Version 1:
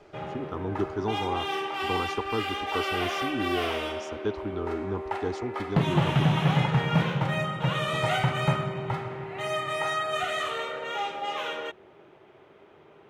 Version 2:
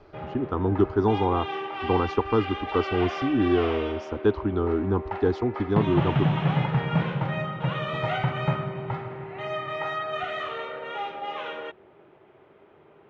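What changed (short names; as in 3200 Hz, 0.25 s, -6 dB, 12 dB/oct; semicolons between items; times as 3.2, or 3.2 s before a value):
speech +8.5 dB; master: add air absorption 260 m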